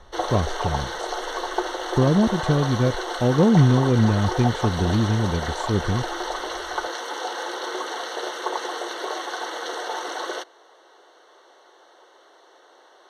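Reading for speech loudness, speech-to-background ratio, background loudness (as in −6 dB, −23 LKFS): −22.0 LKFS, 7.0 dB, −29.0 LKFS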